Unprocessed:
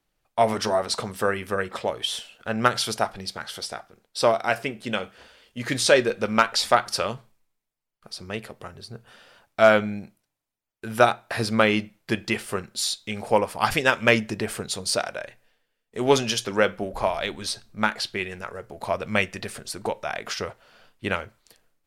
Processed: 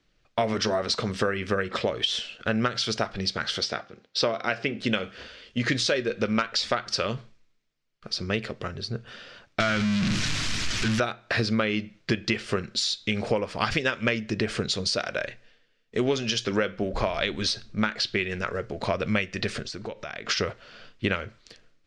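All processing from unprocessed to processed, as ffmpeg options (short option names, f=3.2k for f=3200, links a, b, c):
-filter_complex "[0:a]asettb=1/sr,asplit=3[a][b][c];[a]atrim=end=3.644[d];[b]atrim=start=3.64:end=4.79,asetpts=PTS-STARTPTS,afade=t=in:d=0.004:c=qsin,afade=t=out:st=1.146:d=0.004:c=qsin,highpass=100,lowpass=6k,bandreject=f=261.9:t=h:w=4,bandreject=f=523.8:t=h:w=4,bandreject=f=785.7:t=h:w=4,bandreject=f=1.0476k:t=h:w=4[e];[c]atrim=start=4.786[f];[d][e]acrossfade=d=0.004:c1=hsin:c2=qsin[g];[g][f]acrossfade=d=0.004:c1=qsin:c2=hsin,asettb=1/sr,asplit=3[h][i][j];[h]atrim=end=9.604[k];[i]atrim=start=9.6:end=11,asetpts=PTS-STARTPTS,afade=t=in:d=0.004:c=qsin,afade=t=out:st=1.396:d=0.004:c=qsin,aeval=exprs='val(0)+0.5*0.141*sgn(val(0))':c=same,equalizer=f=510:w=1:g=-12[l];[j]atrim=start=10.996[m];[k][l]acrossfade=d=0.004:c1=hsin:c2=qsin[n];[n][m]acrossfade=d=0.004:c1=qsin:c2=hsin,asettb=1/sr,asplit=3[o][p][q];[o]atrim=end=19.634[r];[p]atrim=start=19.63:end=20.29,asetpts=PTS-STARTPTS,afade=t=in:d=0.004:c=qsin,afade=t=out:st=0.656:d=0.004:c=qsin,lowpass=f=8.4k:w=0.5412,lowpass=f=8.4k:w=1.3066,acompressor=threshold=-43dB:ratio=2.5:attack=3.2:release=140:knee=1:detection=peak[s];[q]atrim=start=20.286[t];[r][s]acrossfade=d=0.004:c1=hsin:c2=qsin[u];[u][t]acrossfade=d=0.004:c1=qsin:c2=hsin,equalizer=f=850:t=o:w=0.75:g=-10,acompressor=threshold=-30dB:ratio=10,lowpass=f=6k:w=0.5412,lowpass=f=6k:w=1.3066,volume=8.5dB"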